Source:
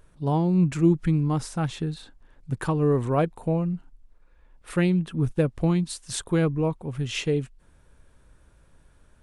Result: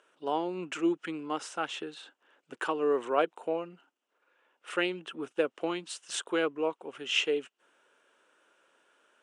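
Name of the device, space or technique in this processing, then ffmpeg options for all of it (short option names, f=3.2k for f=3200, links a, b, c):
phone speaker on a table: -af "highpass=f=350:w=0.5412,highpass=f=350:w=1.3066,equalizer=f=1.4k:t=q:w=4:g=6,equalizer=f=2.9k:t=q:w=4:g=10,equalizer=f=4.4k:t=q:w=4:g=-5,lowpass=f=8.3k:w=0.5412,lowpass=f=8.3k:w=1.3066,volume=-2.5dB"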